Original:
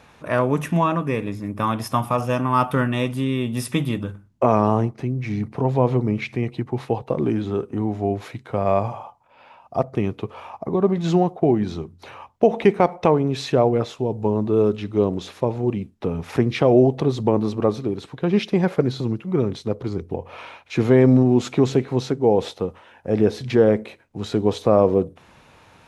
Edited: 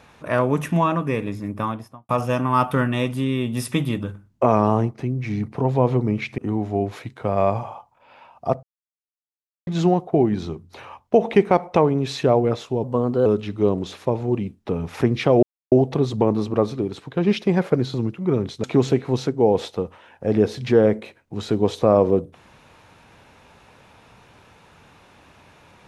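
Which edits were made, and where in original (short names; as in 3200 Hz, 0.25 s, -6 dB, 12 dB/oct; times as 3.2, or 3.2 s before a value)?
1.45–2.09 studio fade out
6.38–7.67 cut
9.92–10.96 mute
14.13–14.61 speed 115%
16.78 insert silence 0.29 s
19.7–21.47 cut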